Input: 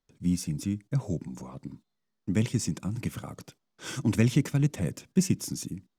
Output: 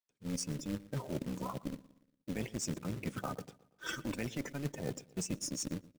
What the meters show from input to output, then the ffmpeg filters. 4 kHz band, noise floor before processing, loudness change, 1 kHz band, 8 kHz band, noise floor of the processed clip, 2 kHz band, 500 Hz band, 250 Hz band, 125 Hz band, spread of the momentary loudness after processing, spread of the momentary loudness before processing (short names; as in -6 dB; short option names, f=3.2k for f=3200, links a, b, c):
-4.5 dB, -80 dBFS, -10.5 dB, +1.0 dB, -4.5 dB, -79 dBFS, -4.0 dB, -5.0 dB, -10.5 dB, -13.5 dB, 7 LU, 17 LU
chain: -filter_complex "[0:a]afftdn=nr=20:nf=-37,highpass=f=880:p=1,acrossover=split=1800[a][b];[a]dynaudnorm=f=110:g=5:m=4.5dB[c];[c][b]amix=inputs=2:normalize=0,alimiter=level_in=1.5dB:limit=-24dB:level=0:latency=1:release=454,volume=-1.5dB,areverse,acompressor=threshold=-45dB:ratio=12,areverse,tremolo=f=280:d=0.621,aresample=22050,aresample=44100,asplit=2[d][e];[e]adelay=118,lowpass=f=2.7k:p=1,volume=-19dB,asplit=2[f][g];[g]adelay=118,lowpass=f=2.7k:p=1,volume=0.46,asplit=2[h][i];[i]adelay=118,lowpass=f=2.7k:p=1,volume=0.46,asplit=2[j][k];[k]adelay=118,lowpass=f=2.7k:p=1,volume=0.46[l];[d][f][h][j][l]amix=inputs=5:normalize=0,acrusher=bits=3:mode=log:mix=0:aa=0.000001,volume=13.5dB"